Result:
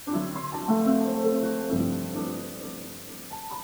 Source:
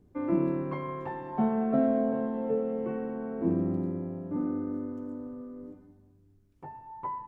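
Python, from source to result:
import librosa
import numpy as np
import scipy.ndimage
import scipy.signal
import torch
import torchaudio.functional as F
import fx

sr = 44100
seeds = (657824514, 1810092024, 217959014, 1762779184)

p1 = fx.stretch_vocoder_free(x, sr, factor=0.5)
p2 = fx.high_shelf_res(p1, sr, hz=2000.0, db=-10.0, q=3.0)
p3 = fx.quant_dither(p2, sr, seeds[0], bits=8, dither='triangular')
p4 = p3 + fx.echo_feedback(p3, sr, ms=463, feedback_pct=49, wet_db=-11.0, dry=0)
y = p4 * 10.0 ** (5.0 / 20.0)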